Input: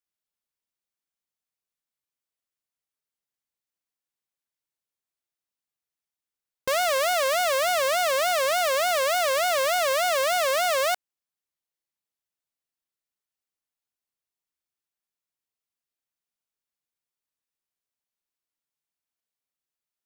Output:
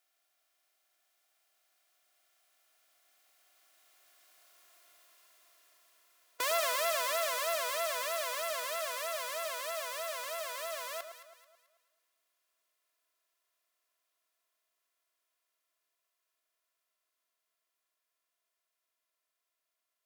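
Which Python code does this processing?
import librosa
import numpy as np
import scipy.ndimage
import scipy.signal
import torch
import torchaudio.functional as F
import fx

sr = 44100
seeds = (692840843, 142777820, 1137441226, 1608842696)

p1 = fx.bin_compress(x, sr, power=0.6)
p2 = fx.doppler_pass(p1, sr, speed_mps=28, closest_m=26.0, pass_at_s=4.75)
p3 = fx.highpass(p2, sr, hz=670.0, slope=6)
p4 = fx.high_shelf(p3, sr, hz=10000.0, db=4.5)
p5 = p4 + 0.64 * np.pad(p4, (int(2.9 * sr / 1000.0), 0))[:len(p4)]
p6 = p5 + fx.echo_alternate(p5, sr, ms=109, hz=1400.0, feedback_pct=60, wet_db=-7.0, dry=0)
y = F.gain(torch.from_numpy(p6), -2.5).numpy()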